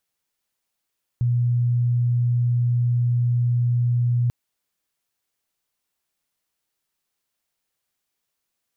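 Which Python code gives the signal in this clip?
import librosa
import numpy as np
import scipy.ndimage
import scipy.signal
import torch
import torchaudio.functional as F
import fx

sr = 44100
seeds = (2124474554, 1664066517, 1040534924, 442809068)

y = 10.0 ** (-17.0 / 20.0) * np.sin(2.0 * np.pi * (121.0 * (np.arange(round(3.09 * sr)) / sr)))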